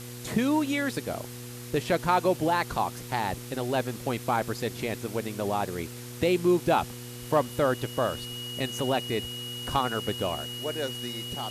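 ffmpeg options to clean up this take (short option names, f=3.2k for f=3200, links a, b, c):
-af "adeclick=t=4,bandreject=f=121.3:t=h:w=4,bandreject=f=242.6:t=h:w=4,bandreject=f=363.9:t=h:w=4,bandreject=f=485.2:t=h:w=4,bandreject=f=2.9k:w=30,afwtdn=0.0063"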